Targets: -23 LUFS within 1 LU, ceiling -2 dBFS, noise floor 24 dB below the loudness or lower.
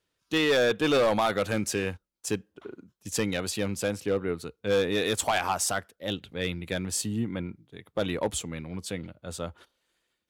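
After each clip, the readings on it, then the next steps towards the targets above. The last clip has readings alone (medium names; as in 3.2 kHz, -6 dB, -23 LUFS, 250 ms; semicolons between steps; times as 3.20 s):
clipped samples 0.9%; clipping level -18.5 dBFS; loudness -28.5 LUFS; peak level -18.5 dBFS; loudness target -23.0 LUFS
-> clip repair -18.5 dBFS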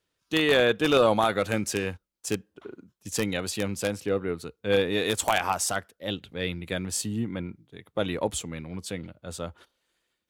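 clipped samples 0.0%; loudness -27.5 LUFS; peak level -9.5 dBFS; loudness target -23.0 LUFS
-> trim +4.5 dB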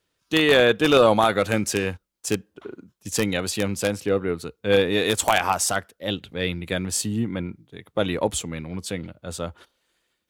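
loudness -23.0 LUFS; peak level -5.0 dBFS; noise floor -76 dBFS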